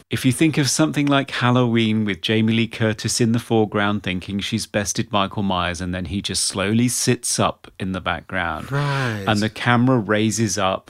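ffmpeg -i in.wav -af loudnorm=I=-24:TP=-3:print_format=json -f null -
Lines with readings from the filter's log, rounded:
"input_i" : "-20.1",
"input_tp" : "-2.3",
"input_lra" : "2.5",
"input_thresh" : "-30.1",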